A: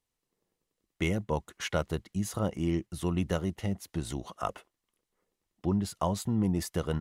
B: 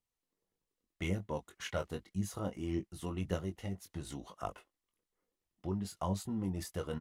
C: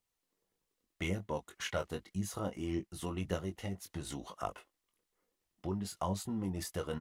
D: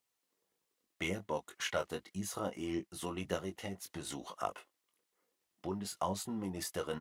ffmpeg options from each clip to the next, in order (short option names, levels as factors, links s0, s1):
-filter_complex "[0:a]aphaser=in_gain=1:out_gain=1:delay=4.4:decay=0.37:speed=1.8:type=triangular,asplit=2[s0][s1];[s1]adelay=21,volume=0.447[s2];[s0][s2]amix=inputs=2:normalize=0,volume=0.376"
-filter_complex "[0:a]lowshelf=f=330:g=-4,asplit=2[s0][s1];[s1]acompressor=threshold=0.00631:ratio=6,volume=0.794[s2];[s0][s2]amix=inputs=2:normalize=0"
-af "highpass=f=290:p=1,volume=1.26"